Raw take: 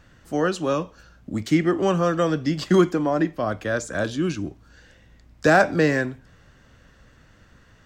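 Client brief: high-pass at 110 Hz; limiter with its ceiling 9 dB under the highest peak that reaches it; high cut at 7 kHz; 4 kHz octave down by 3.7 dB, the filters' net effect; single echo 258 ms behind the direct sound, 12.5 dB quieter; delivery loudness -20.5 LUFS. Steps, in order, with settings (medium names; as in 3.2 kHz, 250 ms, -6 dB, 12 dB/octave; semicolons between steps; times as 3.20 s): high-pass 110 Hz; low-pass 7 kHz; peaking EQ 4 kHz -4.5 dB; peak limiter -14.5 dBFS; delay 258 ms -12.5 dB; trim +5 dB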